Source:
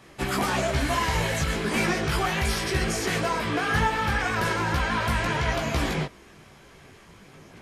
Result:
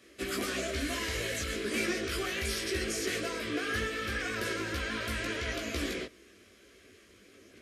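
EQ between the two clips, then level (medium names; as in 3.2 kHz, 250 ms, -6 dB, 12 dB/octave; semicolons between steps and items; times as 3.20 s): high-pass 75 Hz 12 dB/octave; static phaser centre 360 Hz, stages 4; -4.0 dB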